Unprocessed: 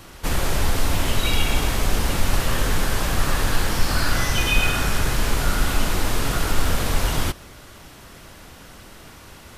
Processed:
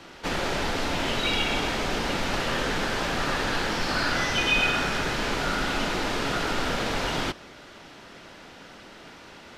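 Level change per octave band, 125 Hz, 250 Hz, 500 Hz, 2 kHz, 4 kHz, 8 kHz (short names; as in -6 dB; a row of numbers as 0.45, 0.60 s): -10.5, -2.0, 0.0, 0.0, -1.0, -9.0 dB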